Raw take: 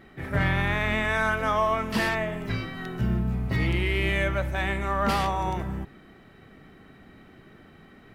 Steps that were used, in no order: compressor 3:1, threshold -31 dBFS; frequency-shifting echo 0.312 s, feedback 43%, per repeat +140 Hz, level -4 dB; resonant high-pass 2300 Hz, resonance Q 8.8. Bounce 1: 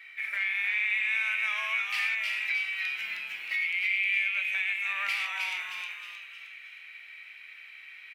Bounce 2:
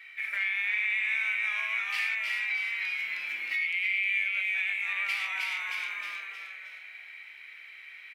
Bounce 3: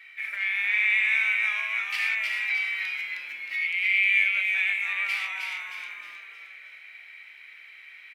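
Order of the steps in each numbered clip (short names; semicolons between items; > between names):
resonant high-pass > compressor > frequency-shifting echo; frequency-shifting echo > resonant high-pass > compressor; compressor > frequency-shifting echo > resonant high-pass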